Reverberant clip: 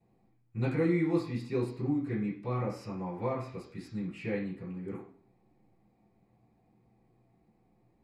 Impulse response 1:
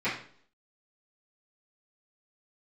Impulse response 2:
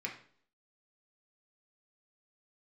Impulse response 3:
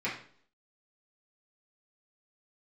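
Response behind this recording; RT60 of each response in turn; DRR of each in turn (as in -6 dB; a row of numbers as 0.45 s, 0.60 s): 3; 0.55 s, 0.55 s, 0.55 s; -14.0 dB, -0.5 dB, -8.5 dB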